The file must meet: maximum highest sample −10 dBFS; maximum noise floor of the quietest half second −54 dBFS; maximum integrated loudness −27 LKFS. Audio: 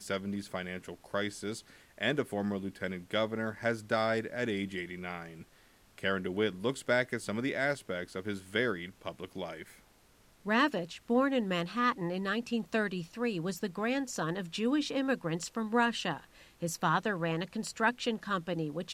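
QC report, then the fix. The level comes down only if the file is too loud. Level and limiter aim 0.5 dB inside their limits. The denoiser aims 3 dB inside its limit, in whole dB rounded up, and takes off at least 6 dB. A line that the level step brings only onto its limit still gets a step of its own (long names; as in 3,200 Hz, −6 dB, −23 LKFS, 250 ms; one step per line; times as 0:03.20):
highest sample −14.5 dBFS: in spec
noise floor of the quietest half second −63 dBFS: in spec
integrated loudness −33.5 LKFS: in spec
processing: no processing needed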